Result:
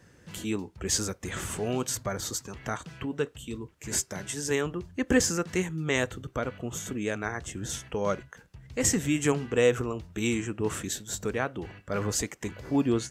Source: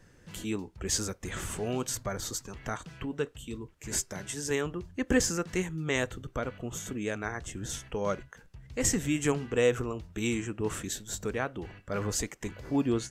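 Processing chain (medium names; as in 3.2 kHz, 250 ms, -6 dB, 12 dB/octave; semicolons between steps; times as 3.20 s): high-pass 59 Hz; trim +2.5 dB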